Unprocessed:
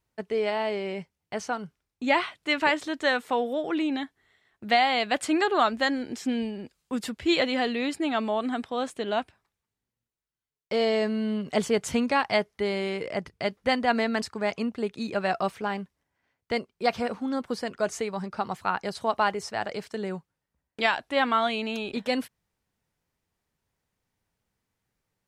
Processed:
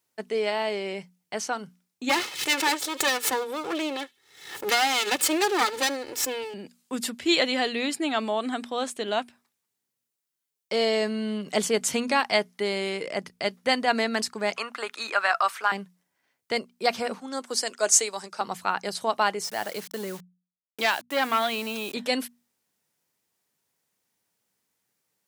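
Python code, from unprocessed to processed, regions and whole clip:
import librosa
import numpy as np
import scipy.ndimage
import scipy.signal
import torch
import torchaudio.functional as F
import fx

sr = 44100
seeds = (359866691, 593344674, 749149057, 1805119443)

y = fx.chain(x, sr, fx.lower_of_two(delay_ms=2.3),
    fx.echo_wet_highpass(ms=75, feedback_pct=31, hz=2700.0, wet_db=-22.0),
    fx.pre_swell(db_per_s=92.0), at=(2.09, 6.54))
y = fx.chain(y, sr, fx.highpass(hz=810.0, slope=12),
    fx.peak_eq(hz=1300.0, db=11.5, octaves=1.1),
    fx.band_squash(depth_pct=40), at=(14.56, 15.72))
y = fx.chain(y, sr, fx.highpass(hz=340.0, slope=12),
    fx.peak_eq(hz=7300.0, db=11.5, octaves=1.4),
    fx.band_widen(depth_pct=40), at=(17.2, 18.41))
y = fx.chain(y, sr, fx.high_shelf(hz=10000.0, db=-11.0),
    fx.quant_dither(seeds[0], bits=8, dither='none'),
    fx.transformer_sat(knee_hz=1500.0), at=(19.44, 21.94))
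y = scipy.signal.sosfilt(scipy.signal.butter(2, 180.0, 'highpass', fs=sr, output='sos'), y)
y = fx.high_shelf(y, sr, hz=4300.0, db=11.5)
y = fx.hum_notches(y, sr, base_hz=60, count=4)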